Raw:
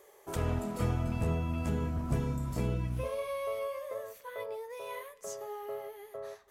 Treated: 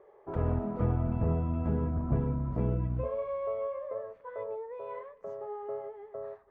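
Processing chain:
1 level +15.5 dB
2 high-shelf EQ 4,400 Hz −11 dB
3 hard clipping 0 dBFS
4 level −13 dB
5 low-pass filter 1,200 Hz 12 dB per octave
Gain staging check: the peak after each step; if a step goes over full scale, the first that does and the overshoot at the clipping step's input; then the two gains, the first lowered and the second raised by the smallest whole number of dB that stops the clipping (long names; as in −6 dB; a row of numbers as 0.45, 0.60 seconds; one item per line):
−2.5, −2.5, −2.5, −15.5, −15.5 dBFS
no step passes full scale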